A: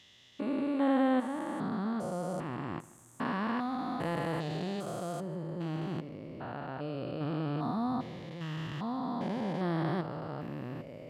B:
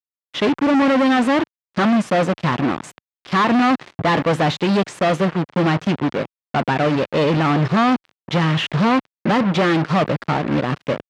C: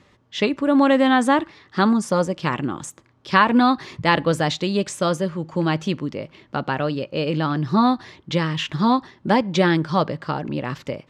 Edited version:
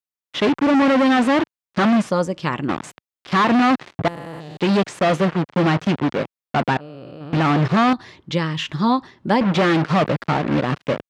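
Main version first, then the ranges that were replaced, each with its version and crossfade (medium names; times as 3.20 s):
B
2.10–2.69 s: from C
4.08–4.57 s: from A
6.77–7.33 s: from A
7.93–9.41 s: from C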